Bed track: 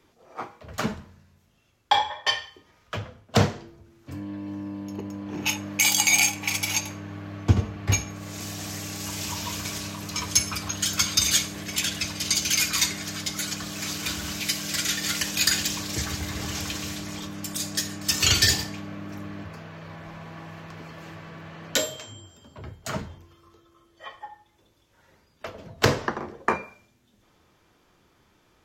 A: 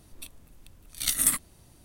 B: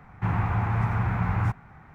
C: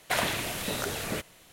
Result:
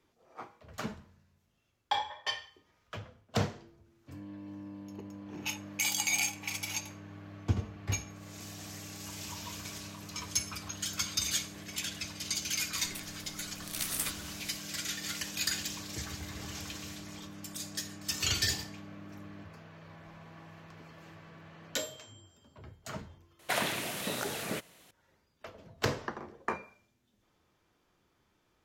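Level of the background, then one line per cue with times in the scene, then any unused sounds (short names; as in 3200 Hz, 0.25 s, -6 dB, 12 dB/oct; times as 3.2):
bed track -10.5 dB
12.73 add A -10 dB + spectral compressor 2:1
23.39 add C -2.5 dB + Chebyshev high-pass 160 Hz
not used: B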